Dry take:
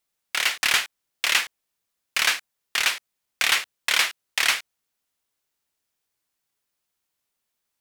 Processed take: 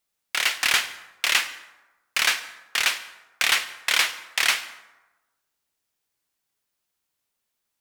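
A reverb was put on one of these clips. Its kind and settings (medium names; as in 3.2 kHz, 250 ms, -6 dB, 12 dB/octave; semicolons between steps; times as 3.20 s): plate-style reverb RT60 1.1 s, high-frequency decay 0.55×, pre-delay 85 ms, DRR 15 dB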